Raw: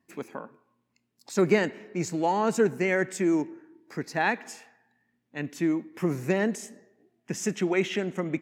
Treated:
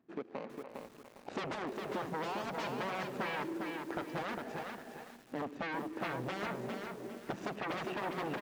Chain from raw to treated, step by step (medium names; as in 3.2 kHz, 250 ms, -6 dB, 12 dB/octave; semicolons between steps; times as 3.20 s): median filter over 41 samples; speakerphone echo 290 ms, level -25 dB; level rider gain up to 14 dB; sine folder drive 7 dB, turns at -12.5 dBFS; high-pass 500 Hz 6 dB/octave; compression 3:1, threshold -38 dBFS, peak gain reduction 17 dB; tape spacing loss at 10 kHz 23 dB; bit-crushed delay 405 ms, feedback 35%, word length 9-bit, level -4 dB; trim -1.5 dB